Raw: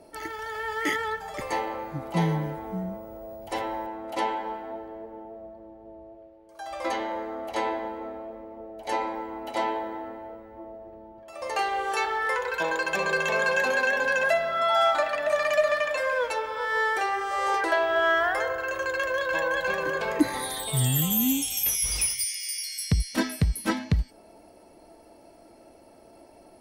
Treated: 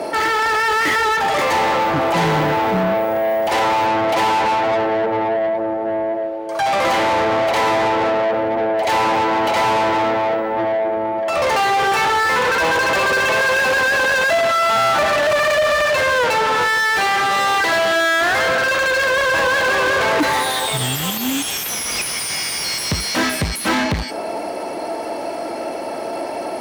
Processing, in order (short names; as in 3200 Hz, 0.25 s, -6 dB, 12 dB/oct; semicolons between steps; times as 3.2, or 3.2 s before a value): 16.75–19.08 fifteen-band EQ 400 Hz -6 dB, 1000 Hz -5 dB, 4000 Hz +7 dB; overdrive pedal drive 39 dB, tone 2700 Hz, clips at -9.5 dBFS; HPF 68 Hz